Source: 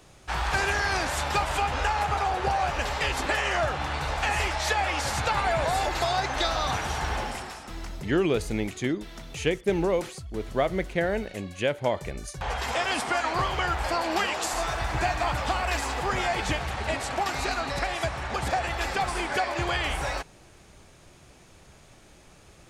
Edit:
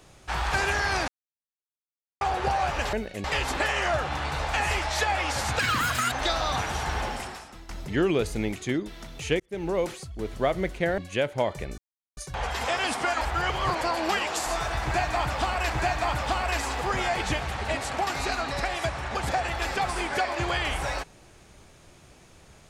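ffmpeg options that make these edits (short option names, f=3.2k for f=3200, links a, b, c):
-filter_complex "[0:a]asplit=14[a][b][c][d][e][f][g][h][i][j][k][l][m][n];[a]atrim=end=1.08,asetpts=PTS-STARTPTS,afade=t=out:st=1.076:d=0.004:c=hsin[o];[b]atrim=start=1.08:end=2.21,asetpts=PTS-STARTPTS,volume=0[p];[c]atrim=start=2.21:end=2.932,asetpts=PTS-STARTPTS,afade=t=in:d=0.004:c=hsin[q];[d]atrim=start=11.128:end=11.442[r];[e]atrim=start=2.928:end=5.284[s];[f]atrim=start=5.28:end=6.27,asetpts=PTS-STARTPTS,asetrate=82467,aresample=44100,atrim=end_sample=23347,asetpts=PTS-STARTPTS[t];[g]atrim=start=6.266:end=7.84,asetpts=PTS-STARTPTS,afade=t=out:st=1.174:d=0.4:silence=0.251189[u];[h]atrim=start=7.84:end=9.55,asetpts=PTS-STARTPTS,afade=t=in:d=0.004:c=hsin:silence=0.251189,afade=t=out:st=1.706:d=0.004:c=hsin[v];[i]atrim=start=9.55:end=11.132,asetpts=PTS-STARTPTS,afade=t=in:d=0.44[w];[j]atrim=start=11.438:end=12.24,asetpts=PTS-STARTPTS,afade=t=out:st=0.798:d=0.004:c=hsin,apad=pad_dur=0.39[x];[k]atrim=start=12.24:end=13.282,asetpts=PTS-STARTPTS,afade=t=in:d=0.004:c=hsin[y];[l]atrim=start=13.278:end=13.882,asetpts=PTS-STARTPTS,areverse[z];[m]atrim=start=13.878:end=15.772[aa];[n]atrim=start=14.888[ab];[o][p][q]concat=n=3:v=0:a=1[ac];[ac][r]acrossfade=d=0.004:c1=hsin:c2=hsin[ad];[ad][s]acrossfade=d=0.004:c1=hsin:c2=hsin[ae];[ae][t]acrossfade=d=0.004:c1=hsin:c2=hsin[af];[u][v][w]concat=n=3:v=0:a=1[ag];[af][ag]acrossfade=d=0.004:c1=hsin:c2=hsin[ah];[x][y]concat=n=2:v=0:a=1[ai];[ah][ai]acrossfade=d=0.004:c1=hsin:c2=hsin[aj];[aj][z]acrossfade=d=0.004:c1=hsin:c2=hsin[ak];[ak][aa]acrossfade=d=0.004:c1=hsin:c2=hsin[al];[al][ab]acrossfade=d=0.004:c1=hsin:c2=hsin"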